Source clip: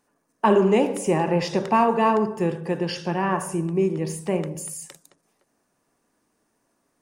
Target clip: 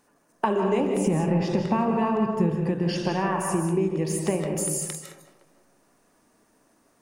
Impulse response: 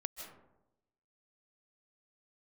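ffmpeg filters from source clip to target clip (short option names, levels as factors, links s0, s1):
-filter_complex "[0:a]asettb=1/sr,asplit=3[s0][s1][s2];[s0]atrim=end=0.804[s3];[s1]atrim=start=0.8:end=2.89,asetpts=PTS-STARTPTS,afade=t=in:d=0.004:c=qsin,afade=t=out:st=2.086:d=0.004:c=qsin,bass=f=250:g=12,treble=f=4000:g=-4[s4];[s2]atrim=start=2.886[s5];[s3][s4]acrossfade=d=0.004:c1=hsin:c2=qsin[s6];[s6][s5]acrossfade=d=0.004:c1=qsin:c2=hsin,acompressor=threshold=0.0398:ratio=6[s7];[1:a]atrim=start_sample=2205[s8];[s7][s8]afir=irnorm=-1:irlink=0,volume=2.66"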